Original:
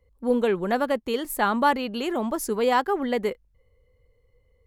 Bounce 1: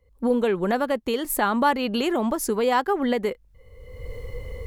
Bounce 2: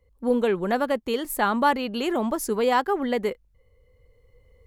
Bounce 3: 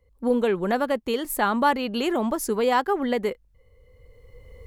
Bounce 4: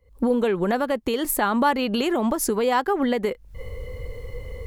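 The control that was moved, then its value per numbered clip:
recorder AGC, rising by: 34, 5.6, 14, 85 dB/s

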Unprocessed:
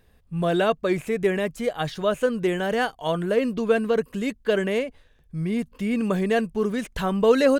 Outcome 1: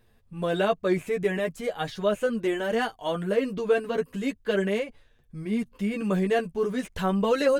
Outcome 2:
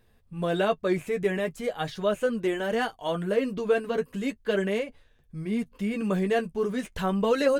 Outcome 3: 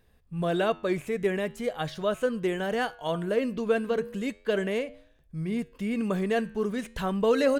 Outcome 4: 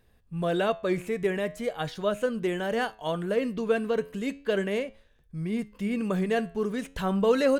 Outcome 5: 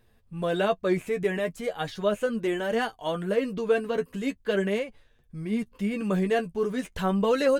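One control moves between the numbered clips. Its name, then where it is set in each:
flange, regen: 0, -28, -89, +85, +26%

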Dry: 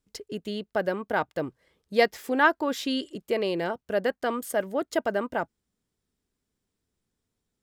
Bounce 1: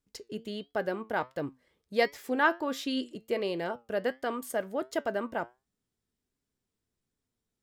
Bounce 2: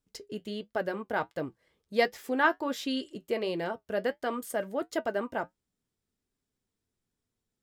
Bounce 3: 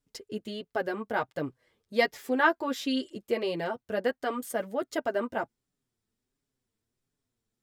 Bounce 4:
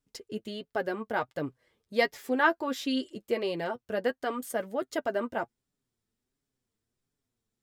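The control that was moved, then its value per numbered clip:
flange, regen: +80, -62, 0, +26%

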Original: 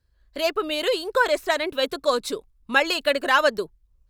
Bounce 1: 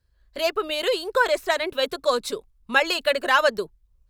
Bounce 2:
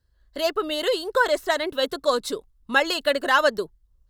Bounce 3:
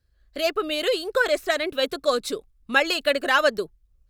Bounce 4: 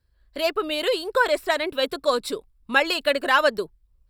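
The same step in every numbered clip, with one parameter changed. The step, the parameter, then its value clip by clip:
notch, frequency: 290, 2400, 960, 6400 Hz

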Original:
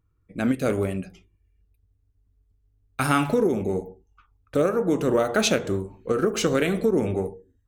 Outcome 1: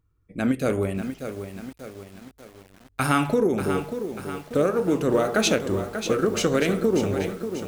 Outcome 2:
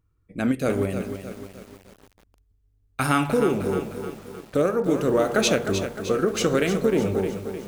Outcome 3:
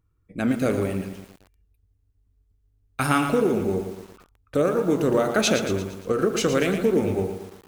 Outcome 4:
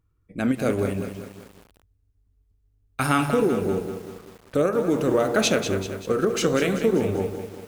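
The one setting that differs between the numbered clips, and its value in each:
lo-fi delay, time: 0.589, 0.306, 0.115, 0.193 s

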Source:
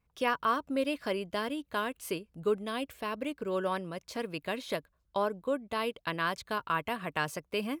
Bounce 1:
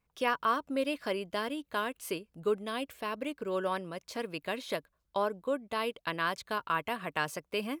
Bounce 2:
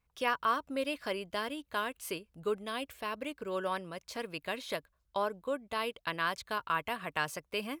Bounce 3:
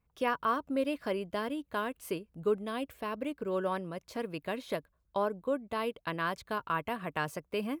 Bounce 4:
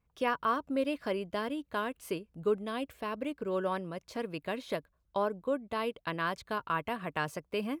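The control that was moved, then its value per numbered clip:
bell, frequency: 67, 210, 5300, 15000 Hz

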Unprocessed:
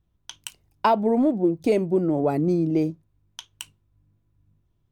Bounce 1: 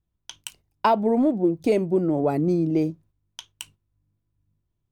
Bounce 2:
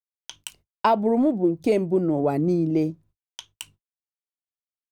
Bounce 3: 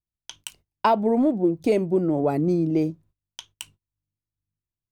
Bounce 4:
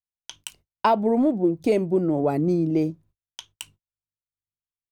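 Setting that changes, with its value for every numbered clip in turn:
gate, range: -8, -59, -24, -40 dB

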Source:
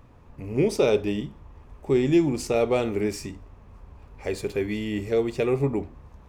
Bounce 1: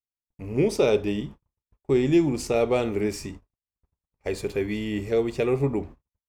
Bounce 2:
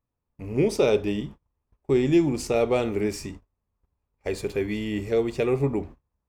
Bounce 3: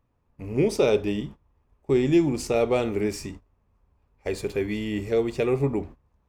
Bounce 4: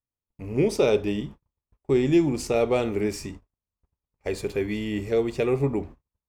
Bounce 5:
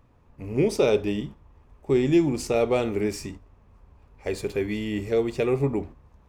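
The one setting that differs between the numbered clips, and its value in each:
gate, range: -58, -32, -19, -45, -7 dB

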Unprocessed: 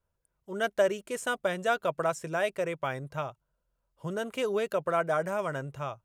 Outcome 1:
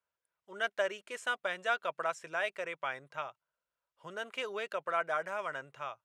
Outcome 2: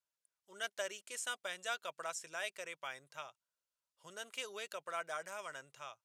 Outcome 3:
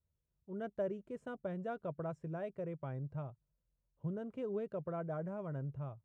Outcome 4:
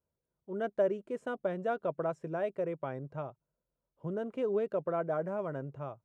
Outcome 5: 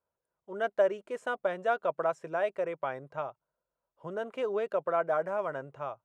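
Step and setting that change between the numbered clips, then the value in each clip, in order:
band-pass, frequency: 2100, 5800, 100, 280, 710 Hz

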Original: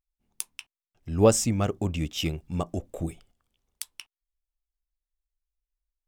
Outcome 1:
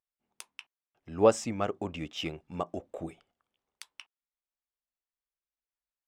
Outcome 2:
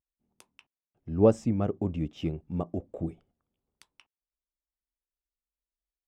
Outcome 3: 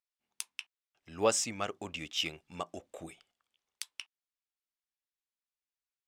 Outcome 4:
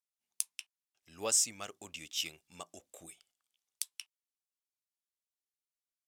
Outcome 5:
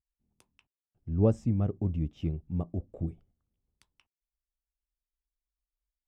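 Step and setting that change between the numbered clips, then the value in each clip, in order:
band-pass, frequency: 1000, 270, 2600, 7800, 100 Hz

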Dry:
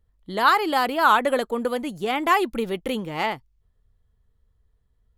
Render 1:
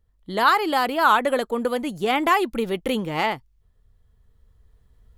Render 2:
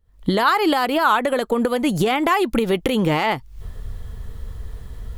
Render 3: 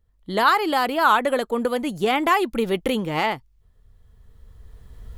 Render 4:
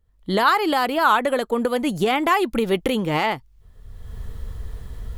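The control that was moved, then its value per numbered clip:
recorder AGC, rising by: 5.1, 85, 13, 33 dB/s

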